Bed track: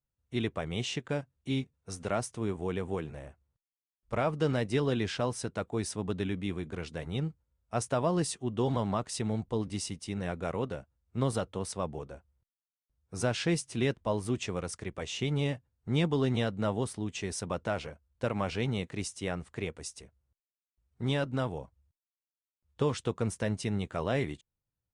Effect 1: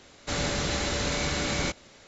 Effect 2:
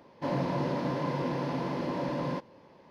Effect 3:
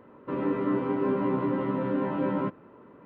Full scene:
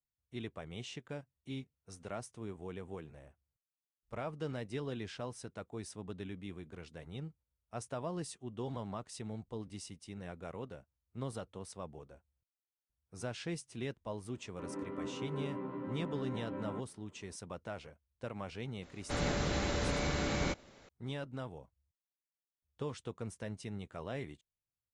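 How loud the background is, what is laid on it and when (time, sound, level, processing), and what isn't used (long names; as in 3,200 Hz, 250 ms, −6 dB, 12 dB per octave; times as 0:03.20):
bed track −11 dB
0:14.31: mix in 3 −14.5 dB
0:18.82: mix in 1 −3.5 dB + high-shelf EQ 2,100 Hz −8.5 dB
not used: 2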